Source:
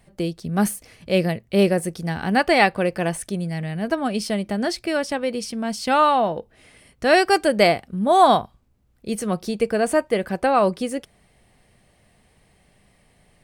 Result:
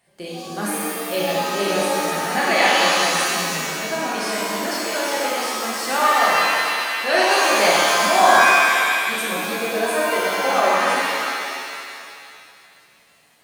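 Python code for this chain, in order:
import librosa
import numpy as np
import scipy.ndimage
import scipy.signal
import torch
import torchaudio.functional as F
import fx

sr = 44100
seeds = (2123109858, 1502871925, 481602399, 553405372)

y = fx.highpass(x, sr, hz=730.0, slope=6)
y = fx.rev_shimmer(y, sr, seeds[0], rt60_s=2.2, semitones=7, shimmer_db=-2, drr_db=-6.5)
y = y * 10.0 ** (-4.5 / 20.0)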